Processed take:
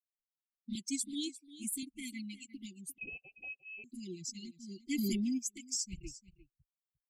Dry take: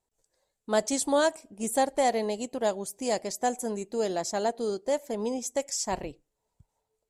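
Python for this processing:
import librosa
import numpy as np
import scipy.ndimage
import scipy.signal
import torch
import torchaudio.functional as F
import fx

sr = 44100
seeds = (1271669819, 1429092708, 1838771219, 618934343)

y = fx.bin_expand(x, sr, power=2.0)
y = fx.recorder_agc(y, sr, target_db=-21.0, rise_db_per_s=9.5, max_gain_db=30)
y = fx.highpass(y, sr, hz=240.0, slope=12, at=(0.75, 1.83))
y = fx.env_flanger(y, sr, rest_ms=5.3, full_db=-23.0)
y = fx.brickwall_bandstop(y, sr, low_hz=370.0, high_hz=2000.0)
y = y + 10.0 ** (-16.0 / 20.0) * np.pad(y, (int(351 * sr / 1000.0), 0))[:len(y)]
y = fx.freq_invert(y, sr, carrier_hz=2800, at=(2.98, 3.84))
y = fx.env_flatten(y, sr, amount_pct=100, at=(4.89, 5.37), fade=0.02)
y = y * librosa.db_to_amplitude(-1.0)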